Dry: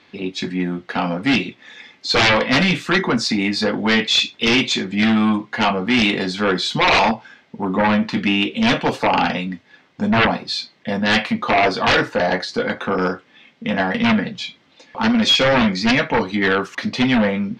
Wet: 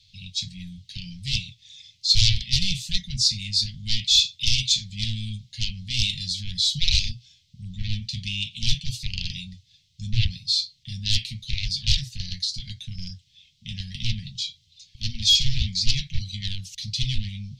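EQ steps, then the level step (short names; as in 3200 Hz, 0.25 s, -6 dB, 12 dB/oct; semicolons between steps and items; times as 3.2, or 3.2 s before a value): inverse Chebyshev band-stop 310–1400 Hz, stop band 60 dB; low shelf 67 Hz +12 dB; +3.5 dB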